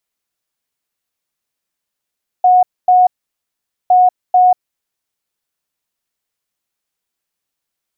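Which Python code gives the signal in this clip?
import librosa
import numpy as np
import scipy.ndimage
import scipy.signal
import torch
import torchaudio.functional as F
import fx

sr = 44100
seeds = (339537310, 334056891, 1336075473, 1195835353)

y = fx.beep_pattern(sr, wave='sine', hz=730.0, on_s=0.19, off_s=0.25, beeps=2, pause_s=0.83, groups=2, level_db=-5.5)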